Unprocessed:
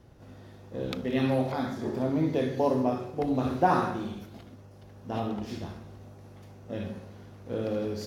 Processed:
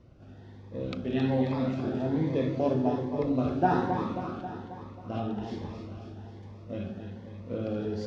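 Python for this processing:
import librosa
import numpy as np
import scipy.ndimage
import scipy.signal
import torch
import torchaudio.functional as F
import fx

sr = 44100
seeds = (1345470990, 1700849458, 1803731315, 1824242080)

p1 = fx.air_absorb(x, sr, metres=130.0)
p2 = p1 + fx.echo_feedback(p1, sr, ms=269, feedback_pct=60, wet_db=-7, dry=0)
y = fx.notch_cascade(p2, sr, direction='rising', hz=1.2)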